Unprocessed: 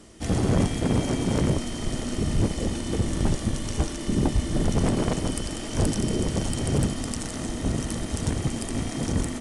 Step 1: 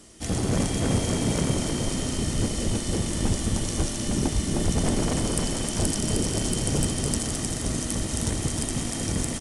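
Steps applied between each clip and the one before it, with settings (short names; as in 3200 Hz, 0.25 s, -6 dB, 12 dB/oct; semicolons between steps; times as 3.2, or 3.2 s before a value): high shelf 4100 Hz +9.5 dB; bouncing-ball echo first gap 0.31 s, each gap 0.7×, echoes 5; gain -3 dB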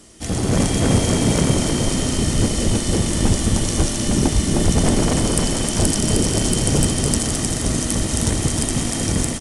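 AGC gain up to 4 dB; gain +3.5 dB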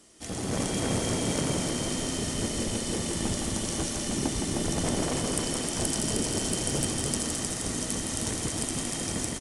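low shelf 160 Hz -10 dB; echo 0.164 s -5.5 dB; gain -9 dB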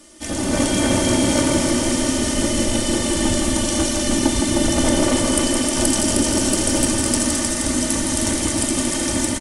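comb 3.4 ms, depth 64%; on a send at -6 dB: reverb RT60 0.80 s, pre-delay 3 ms; on the sum: gain +8 dB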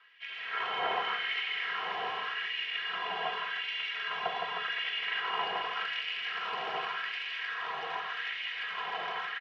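mistuned SSB -160 Hz 250–3300 Hz; LFO high-pass sine 0.86 Hz 810–2300 Hz; gain -7.5 dB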